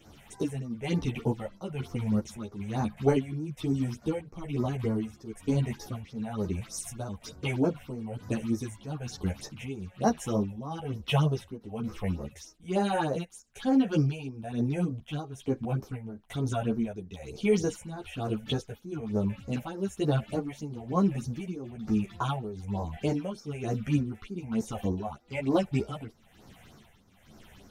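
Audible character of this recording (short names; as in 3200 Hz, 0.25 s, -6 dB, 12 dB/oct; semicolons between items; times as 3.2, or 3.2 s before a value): phasing stages 6, 3.3 Hz, lowest notch 290–3200 Hz; tremolo triangle 1.1 Hz, depth 85%; a shimmering, thickened sound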